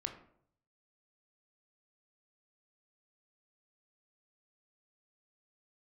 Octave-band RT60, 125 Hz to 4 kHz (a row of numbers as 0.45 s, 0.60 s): 0.95 s, 0.70 s, 0.70 s, 0.60 s, 0.45 s, 0.35 s